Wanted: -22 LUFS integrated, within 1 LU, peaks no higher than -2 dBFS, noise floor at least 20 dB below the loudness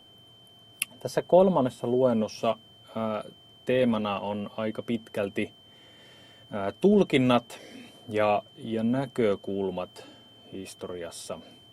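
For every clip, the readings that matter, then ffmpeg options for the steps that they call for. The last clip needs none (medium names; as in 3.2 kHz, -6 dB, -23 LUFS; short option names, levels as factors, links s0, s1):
steady tone 3.1 kHz; tone level -53 dBFS; loudness -27.5 LUFS; peak level -6.5 dBFS; loudness target -22.0 LUFS
-> -af "bandreject=f=3100:w=30"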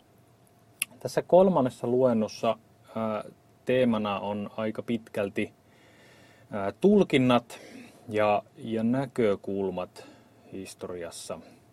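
steady tone not found; loudness -27.5 LUFS; peak level -6.5 dBFS; loudness target -22.0 LUFS
-> -af "volume=1.88,alimiter=limit=0.794:level=0:latency=1"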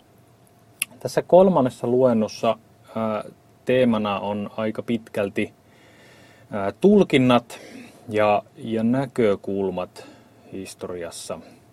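loudness -22.0 LUFS; peak level -2.0 dBFS; noise floor -55 dBFS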